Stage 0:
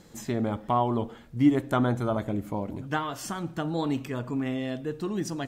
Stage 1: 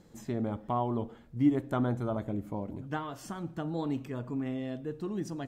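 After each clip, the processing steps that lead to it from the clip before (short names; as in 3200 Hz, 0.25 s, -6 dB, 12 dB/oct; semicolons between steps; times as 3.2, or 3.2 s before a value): tilt shelf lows +3.5 dB, about 1100 Hz; gain -7.5 dB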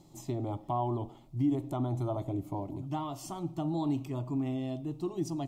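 limiter -24 dBFS, peak gain reduction 9 dB; fixed phaser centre 320 Hz, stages 8; gain +4 dB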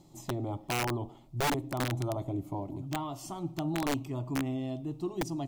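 wrapped overs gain 24 dB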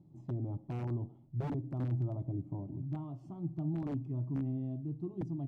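band-pass 140 Hz, Q 1.2; gain +1.5 dB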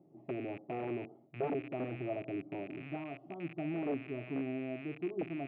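rattling part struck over -44 dBFS, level -40 dBFS; speaker cabinet 360–2300 Hz, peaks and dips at 420 Hz +7 dB, 670 Hz +7 dB, 970 Hz -8 dB, 1600 Hz -5 dB; gain +5.5 dB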